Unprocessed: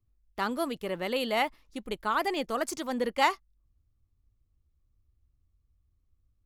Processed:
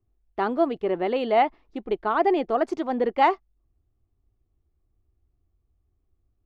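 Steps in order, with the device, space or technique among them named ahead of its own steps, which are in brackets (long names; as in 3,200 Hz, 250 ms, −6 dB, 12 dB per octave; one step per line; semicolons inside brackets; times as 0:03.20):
inside a cardboard box (low-pass filter 2,800 Hz 12 dB per octave; hollow resonant body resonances 380/700 Hz, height 12 dB, ringing for 20 ms)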